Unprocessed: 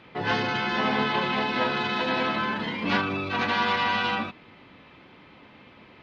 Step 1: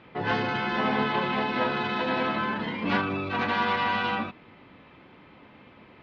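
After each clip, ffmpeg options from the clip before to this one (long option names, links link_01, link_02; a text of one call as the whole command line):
ffmpeg -i in.wav -af "lowpass=frequency=2400:poles=1" out.wav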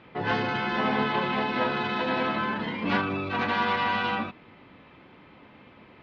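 ffmpeg -i in.wav -af anull out.wav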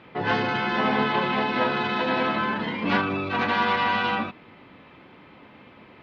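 ffmpeg -i in.wav -af "lowshelf=frequency=83:gain=-5,volume=3dB" out.wav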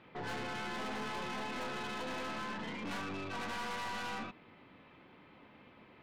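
ffmpeg -i in.wav -af "aeval=exprs='(tanh(31.6*val(0)+0.45)-tanh(0.45))/31.6':channel_layout=same,volume=-8dB" out.wav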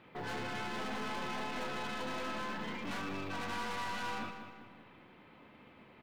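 ffmpeg -i in.wav -filter_complex "[0:a]asplit=2[link_01][link_02];[link_02]adelay=193,lowpass=frequency=4500:poles=1,volume=-8.5dB,asplit=2[link_03][link_04];[link_04]adelay=193,lowpass=frequency=4500:poles=1,volume=0.47,asplit=2[link_05][link_06];[link_06]adelay=193,lowpass=frequency=4500:poles=1,volume=0.47,asplit=2[link_07][link_08];[link_08]adelay=193,lowpass=frequency=4500:poles=1,volume=0.47,asplit=2[link_09][link_10];[link_10]adelay=193,lowpass=frequency=4500:poles=1,volume=0.47[link_11];[link_01][link_03][link_05][link_07][link_09][link_11]amix=inputs=6:normalize=0,acrusher=bits=9:mode=log:mix=0:aa=0.000001" out.wav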